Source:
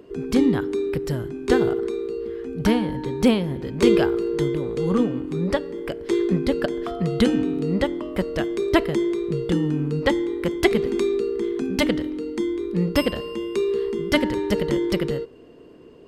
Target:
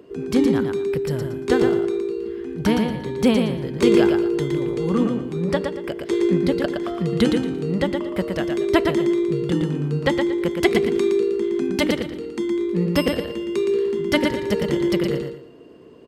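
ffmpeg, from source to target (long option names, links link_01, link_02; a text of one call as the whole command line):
ffmpeg -i in.wav -filter_complex "[0:a]highpass=69,asplit=2[link_01][link_02];[link_02]aecho=0:1:116|232|348:0.562|0.146|0.038[link_03];[link_01][link_03]amix=inputs=2:normalize=0" out.wav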